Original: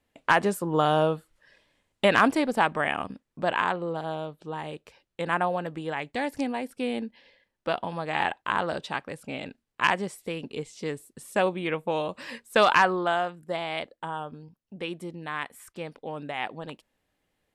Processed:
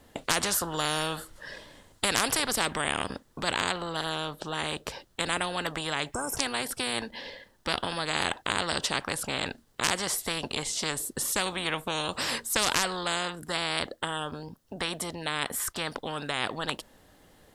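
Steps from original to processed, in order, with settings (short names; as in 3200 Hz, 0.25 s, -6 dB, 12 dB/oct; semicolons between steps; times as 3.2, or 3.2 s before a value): spectral repair 6.15–6.35, 1600–5200 Hz before; bell 2400 Hz -9 dB 0.53 oct; spectral compressor 4:1; gain +2.5 dB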